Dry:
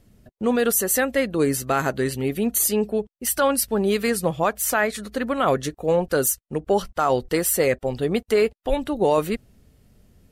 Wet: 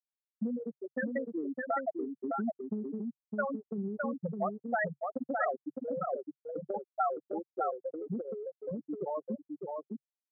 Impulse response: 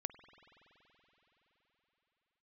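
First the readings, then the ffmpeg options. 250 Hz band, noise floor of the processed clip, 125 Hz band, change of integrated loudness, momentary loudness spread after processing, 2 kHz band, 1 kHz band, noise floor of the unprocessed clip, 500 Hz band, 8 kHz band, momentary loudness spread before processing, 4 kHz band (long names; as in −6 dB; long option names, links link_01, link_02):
−11.5 dB, below −85 dBFS, −15.0 dB, −14.0 dB, 8 LU, −12.5 dB, −10.0 dB, −65 dBFS, −14.5 dB, below −40 dB, 6 LU, below −40 dB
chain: -filter_complex "[0:a]afftfilt=real='re*gte(hypot(re,im),0.562)':imag='im*gte(hypot(re,im),0.562)':win_size=1024:overlap=0.75,lowshelf=frequency=180:gain=9,acompressor=threshold=-31dB:ratio=12,highpass=frequency=130:width=0.5412,highpass=frequency=130:width=1.3066,equalizer=frequency=140:width_type=q:width=4:gain=4,equalizer=frequency=440:width_type=q:width=4:gain=-10,equalizer=frequency=760:width_type=q:width=4:gain=6,equalizer=frequency=1300:width_type=q:width=4:gain=3,equalizer=frequency=1900:width_type=q:width=4:gain=7,lowpass=frequency=2200:width=0.5412,lowpass=frequency=2200:width=1.3066,asplit=2[link_01][link_02];[link_02]aecho=0:1:610:0.668[link_03];[link_01][link_03]amix=inputs=2:normalize=0"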